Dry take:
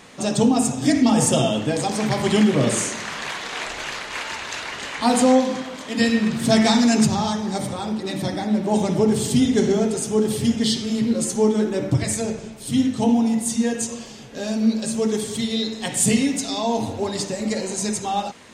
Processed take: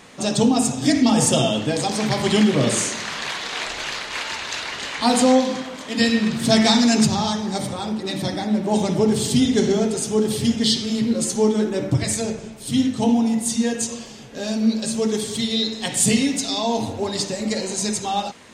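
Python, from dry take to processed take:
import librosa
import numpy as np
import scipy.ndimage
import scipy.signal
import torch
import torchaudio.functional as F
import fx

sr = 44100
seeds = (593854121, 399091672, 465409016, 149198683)

y = fx.dynamic_eq(x, sr, hz=4200.0, q=1.2, threshold_db=-40.0, ratio=4.0, max_db=5)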